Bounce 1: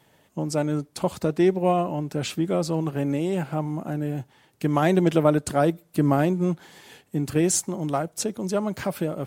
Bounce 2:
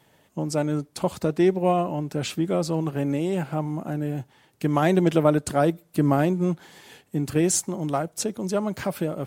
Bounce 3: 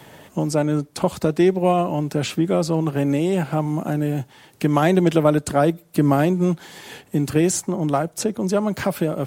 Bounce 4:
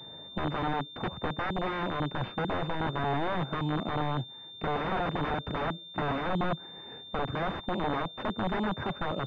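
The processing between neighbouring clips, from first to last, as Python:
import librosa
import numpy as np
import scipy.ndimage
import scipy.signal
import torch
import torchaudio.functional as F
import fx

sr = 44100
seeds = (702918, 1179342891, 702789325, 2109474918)

y1 = x
y2 = fx.band_squash(y1, sr, depth_pct=40)
y2 = y2 * 10.0 ** (4.0 / 20.0)
y3 = fx.wiener(y2, sr, points=9)
y3 = (np.mod(10.0 ** (16.5 / 20.0) * y3 + 1.0, 2.0) - 1.0) / 10.0 ** (16.5 / 20.0)
y3 = fx.pwm(y3, sr, carrier_hz=3600.0)
y3 = y3 * 10.0 ** (-6.0 / 20.0)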